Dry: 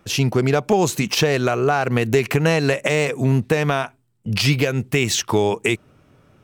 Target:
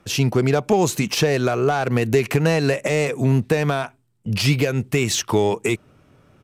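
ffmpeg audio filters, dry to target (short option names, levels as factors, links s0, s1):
-filter_complex "[0:a]acrossover=split=660|6000[s0][s1][s2];[s1]asoftclip=type=tanh:threshold=0.112[s3];[s0][s3][s2]amix=inputs=3:normalize=0,aresample=32000,aresample=44100"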